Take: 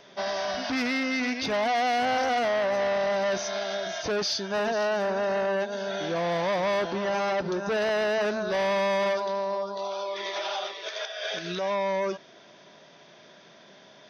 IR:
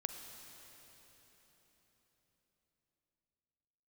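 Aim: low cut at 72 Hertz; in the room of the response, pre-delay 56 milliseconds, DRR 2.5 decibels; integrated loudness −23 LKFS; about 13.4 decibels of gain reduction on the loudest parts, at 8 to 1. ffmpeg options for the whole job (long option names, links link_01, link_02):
-filter_complex "[0:a]highpass=72,acompressor=threshold=-38dB:ratio=8,asplit=2[link_01][link_02];[1:a]atrim=start_sample=2205,adelay=56[link_03];[link_02][link_03]afir=irnorm=-1:irlink=0,volume=-2dB[link_04];[link_01][link_04]amix=inputs=2:normalize=0,volume=15dB"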